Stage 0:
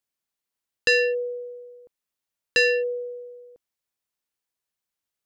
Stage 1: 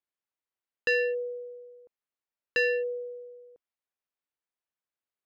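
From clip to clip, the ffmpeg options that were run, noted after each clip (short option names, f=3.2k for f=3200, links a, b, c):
-af "bass=f=250:g=-6,treble=f=4k:g=-15,volume=-4.5dB"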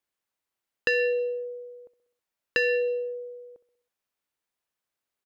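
-af "aecho=1:1:64|128|192|256|320:0.15|0.0823|0.0453|0.0249|0.0137,acompressor=threshold=-28dB:ratio=6,volume=6.5dB"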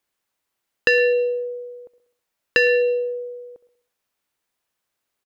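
-af "aecho=1:1:110:0.1,volume=7.5dB"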